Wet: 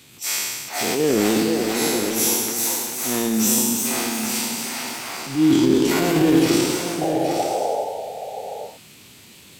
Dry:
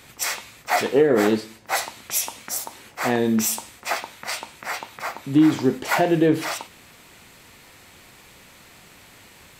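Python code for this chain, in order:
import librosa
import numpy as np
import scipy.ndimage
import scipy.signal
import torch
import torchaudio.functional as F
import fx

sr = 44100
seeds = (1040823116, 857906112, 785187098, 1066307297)

p1 = fx.spec_trails(x, sr, decay_s=1.4)
p2 = scipy.signal.sosfilt(scipy.signal.butter(2, 98.0, 'highpass', fs=sr, output='sos'), p1)
p3 = fx.band_shelf(p2, sr, hz=1000.0, db=-9.0, octaves=2.4)
p4 = fx.transient(p3, sr, attack_db=-10, sustain_db=8)
p5 = fx.spec_paint(p4, sr, seeds[0], shape='noise', start_s=7.01, length_s=0.83, low_hz=400.0, high_hz=830.0, level_db=-24.0)
p6 = p5 + fx.echo_single(p5, sr, ms=825, db=-8.5, dry=0)
y = fx.echo_pitch(p6, sr, ms=527, semitones=1, count=2, db_per_echo=-6.0)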